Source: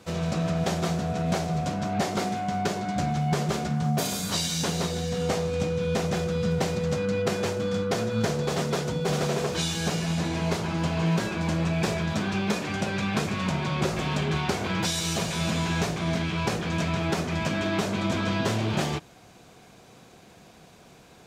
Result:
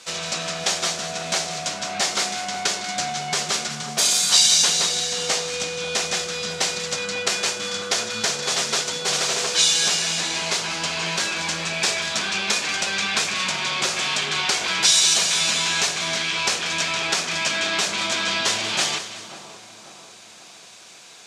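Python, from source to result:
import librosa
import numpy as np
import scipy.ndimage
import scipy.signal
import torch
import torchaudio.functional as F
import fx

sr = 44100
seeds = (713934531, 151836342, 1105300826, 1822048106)

y = fx.weighting(x, sr, curve='ITU-R 468')
y = fx.echo_split(y, sr, split_hz=1200.0, low_ms=542, high_ms=187, feedback_pct=52, wet_db=-12.0)
y = y * 10.0 ** (3.0 / 20.0)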